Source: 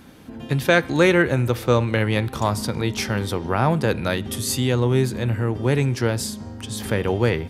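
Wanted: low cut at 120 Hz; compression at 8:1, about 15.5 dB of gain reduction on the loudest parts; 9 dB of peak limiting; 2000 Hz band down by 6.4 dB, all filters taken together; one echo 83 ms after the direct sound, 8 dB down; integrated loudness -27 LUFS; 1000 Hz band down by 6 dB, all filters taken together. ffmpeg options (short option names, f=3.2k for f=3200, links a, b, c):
-af "highpass=120,equalizer=f=1k:t=o:g=-6.5,equalizer=f=2k:t=o:g=-6,acompressor=threshold=-30dB:ratio=8,alimiter=level_in=1.5dB:limit=-24dB:level=0:latency=1,volume=-1.5dB,aecho=1:1:83:0.398,volume=8.5dB"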